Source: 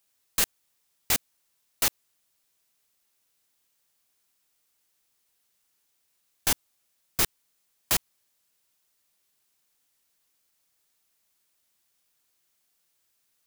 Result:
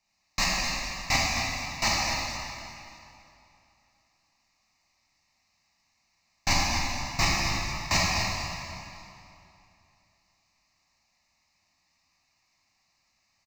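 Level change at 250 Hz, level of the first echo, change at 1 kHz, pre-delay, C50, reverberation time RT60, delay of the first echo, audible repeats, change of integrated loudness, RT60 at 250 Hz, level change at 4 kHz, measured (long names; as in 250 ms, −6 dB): +8.0 dB, −8.5 dB, +11.0 dB, 7 ms, −3.5 dB, 2.8 s, 254 ms, 1, 0.0 dB, 2.8 s, +6.0 dB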